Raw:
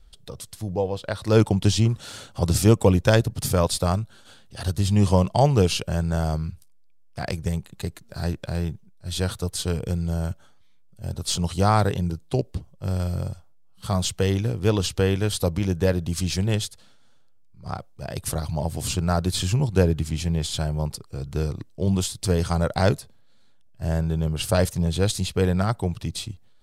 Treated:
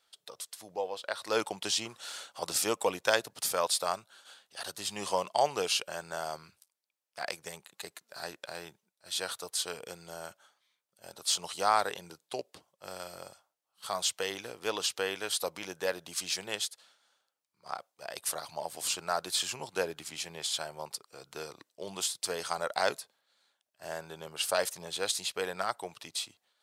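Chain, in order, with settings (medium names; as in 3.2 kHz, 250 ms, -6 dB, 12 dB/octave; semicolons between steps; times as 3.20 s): high-pass 720 Hz 12 dB/octave; trim -2.5 dB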